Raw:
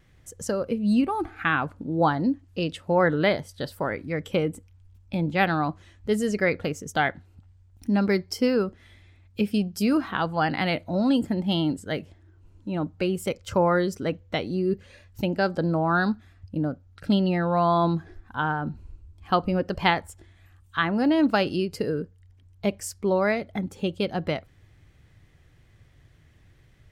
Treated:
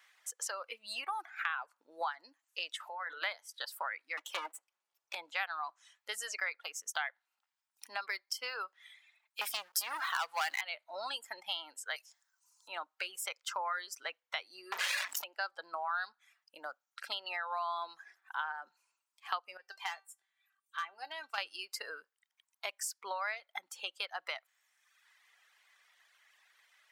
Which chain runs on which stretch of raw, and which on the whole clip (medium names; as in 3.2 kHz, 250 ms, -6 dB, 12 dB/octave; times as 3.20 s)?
2.80–3.22 s: compressor with a negative ratio -31 dBFS + hum notches 60/120/180/240/300/360/420/480/540 Hz
4.17–5.15 s: comb filter that takes the minimum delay 3.5 ms + resonant high-pass 310 Hz, resonance Q 2.1
9.41–10.61 s: waveshaping leveller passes 3 + treble shelf 6.8 kHz +10 dB
11.96–12.68 s: high-pass 720 Hz + resonant high shelf 4 kHz +11.5 dB, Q 1.5
14.72–15.24 s: high-pass 42 Hz 24 dB/octave + waveshaping leveller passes 5 + level flattener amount 100%
19.57–21.38 s: overload inside the chain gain 13.5 dB + feedback comb 390 Hz, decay 0.19 s, mix 80%
whole clip: reverb removal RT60 1 s; high-pass 910 Hz 24 dB/octave; compression 3:1, threshold -40 dBFS; trim +3 dB